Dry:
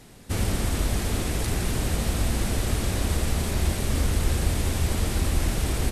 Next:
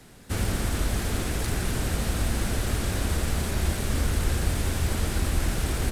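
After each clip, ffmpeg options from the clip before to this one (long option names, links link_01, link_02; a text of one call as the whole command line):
ffmpeg -i in.wav -filter_complex "[0:a]equalizer=frequency=1500:width=3.2:gain=4.5,acrossover=split=120|1500[link_01][link_02][link_03];[link_03]acrusher=bits=4:mode=log:mix=0:aa=0.000001[link_04];[link_01][link_02][link_04]amix=inputs=3:normalize=0,volume=-1.5dB" out.wav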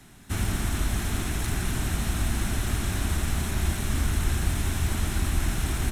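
ffmpeg -i in.wav -af "equalizer=frequency=500:width_type=o:width=0.38:gain=-14.5,bandreject=frequency=4700:width=7.4" out.wav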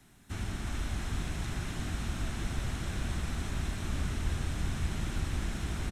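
ffmpeg -i in.wav -filter_complex "[0:a]acrossover=split=7800[link_01][link_02];[link_02]acompressor=threshold=-55dB:ratio=4:attack=1:release=60[link_03];[link_01][link_03]amix=inputs=2:normalize=0,asplit=8[link_04][link_05][link_06][link_07][link_08][link_09][link_10][link_11];[link_05]adelay=357,afreqshift=-96,volume=-4.5dB[link_12];[link_06]adelay=714,afreqshift=-192,volume=-9.9dB[link_13];[link_07]adelay=1071,afreqshift=-288,volume=-15.2dB[link_14];[link_08]adelay=1428,afreqshift=-384,volume=-20.6dB[link_15];[link_09]adelay=1785,afreqshift=-480,volume=-25.9dB[link_16];[link_10]adelay=2142,afreqshift=-576,volume=-31.3dB[link_17];[link_11]adelay=2499,afreqshift=-672,volume=-36.6dB[link_18];[link_04][link_12][link_13][link_14][link_15][link_16][link_17][link_18]amix=inputs=8:normalize=0,volume=-9dB" out.wav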